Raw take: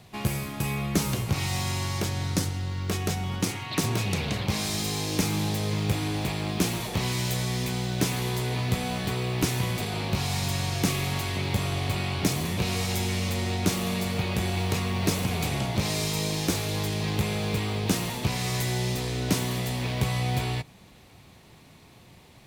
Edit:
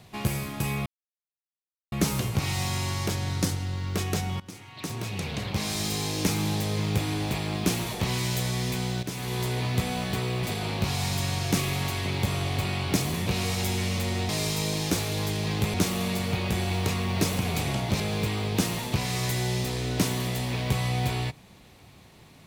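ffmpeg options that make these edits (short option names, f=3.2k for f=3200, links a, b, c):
-filter_complex "[0:a]asplit=8[a][b][c][d][e][f][g][h];[a]atrim=end=0.86,asetpts=PTS-STARTPTS,afade=t=out:st=0.856:d=0.004:c=hsin,apad=pad_dur=1.06[i];[b]atrim=start=0.86:end=3.34,asetpts=PTS-STARTPTS,afade=t=in:d=0.004:c=hsin,afade=t=out:st=2.476:d=0.004:c=hsin:silence=0.105925[j];[c]atrim=start=3.34:end=7.97,asetpts=PTS-STARTPTS,afade=t=in:d=1.46:silence=0.105925,afade=t=out:st=4.626:d=0.004:c=hsin:silence=0.223872[k];[d]atrim=start=7.97:end=9.372,asetpts=PTS-STARTPTS,afade=t=in:d=0.38:silence=0.223872[l];[e]atrim=start=9.738:end=13.602[m];[f]atrim=start=15.858:end=17.312[n];[g]atrim=start=13.598:end=15.862[o];[h]atrim=start=17.308[p];[i][j][k][l]concat=n=4:v=0:a=1[q];[q][m]acrossfade=d=0.004:c1=hsin:c2=hsin[r];[r][n]acrossfade=d=0.004:c1=hsin:c2=hsin[s];[s][o]acrossfade=d=0.004:c1=hsin:c2=hsin[t];[t][p]acrossfade=d=0.004:c1=hsin:c2=hsin"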